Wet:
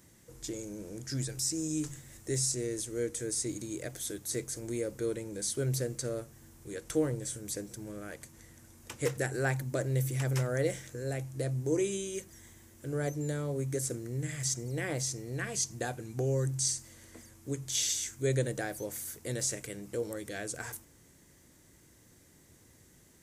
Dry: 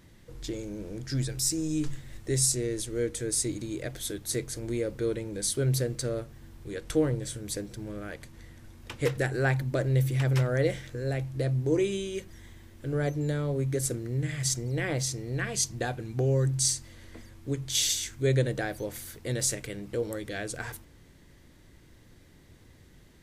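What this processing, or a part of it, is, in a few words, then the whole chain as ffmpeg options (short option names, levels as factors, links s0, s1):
budget condenser microphone: -filter_complex "[0:a]acrossover=split=4900[s0][s1];[s1]acompressor=threshold=0.00794:ratio=4:attack=1:release=60[s2];[s0][s2]amix=inputs=2:normalize=0,highpass=f=110:p=1,highshelf=f=5200:t=q:w=1.5:g=8.5,volume=0.668"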